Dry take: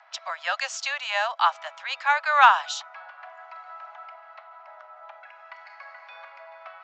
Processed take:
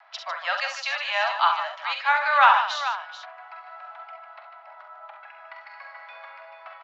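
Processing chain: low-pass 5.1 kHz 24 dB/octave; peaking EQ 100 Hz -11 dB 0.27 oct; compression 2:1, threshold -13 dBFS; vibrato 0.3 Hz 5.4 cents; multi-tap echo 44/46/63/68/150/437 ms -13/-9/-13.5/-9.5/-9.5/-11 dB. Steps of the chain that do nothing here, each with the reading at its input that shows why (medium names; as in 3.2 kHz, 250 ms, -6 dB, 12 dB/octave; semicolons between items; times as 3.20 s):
peaking EQ 100 Hz: input has nothing below 510 Hz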